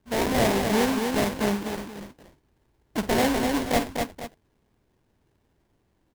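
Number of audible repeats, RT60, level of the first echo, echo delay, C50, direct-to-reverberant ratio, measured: 3, no reverb, -13.0 dB, 50 ms, no reverb, no reverb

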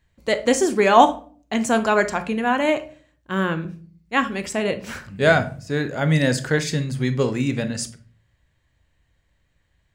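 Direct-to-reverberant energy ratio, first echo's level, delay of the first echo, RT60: 9.5 dB, no echo, no echo, 0.40 s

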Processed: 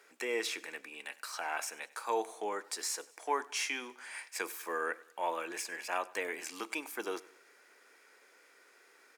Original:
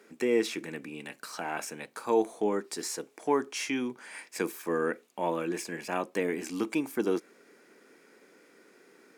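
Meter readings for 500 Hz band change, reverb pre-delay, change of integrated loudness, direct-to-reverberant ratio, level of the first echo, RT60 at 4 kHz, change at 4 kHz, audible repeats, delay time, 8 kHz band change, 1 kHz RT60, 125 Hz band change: -9.0 dB, no reverb, -5.5 dB, no reverb, -21.0 dB, no reverb, 0.0 dB, 3, 97 ms, 0.0 dB, no reverb, under -20 dB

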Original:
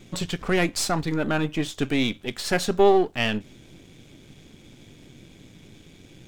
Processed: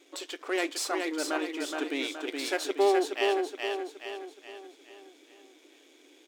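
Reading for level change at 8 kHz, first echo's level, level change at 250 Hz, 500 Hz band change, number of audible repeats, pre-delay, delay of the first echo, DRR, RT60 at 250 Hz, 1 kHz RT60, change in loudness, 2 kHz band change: -4.5 dB, -4.0 dB, -8.0 dB, -4.5 dB, 5, no reverb, 421 ms, no reverb, no reverb, no reverb, -6.5 dB, -4.5 dB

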